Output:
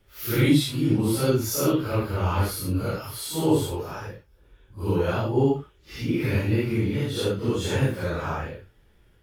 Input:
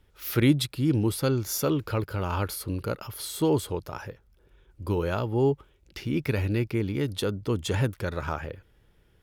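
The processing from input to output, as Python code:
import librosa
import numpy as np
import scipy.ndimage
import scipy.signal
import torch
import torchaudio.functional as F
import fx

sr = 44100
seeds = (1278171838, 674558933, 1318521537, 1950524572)

y = fx.phase_scramble(x, sr, seeds[0], window_ms=200)
y = F.gain(torch.from_numpy(y), 3.0).numpy()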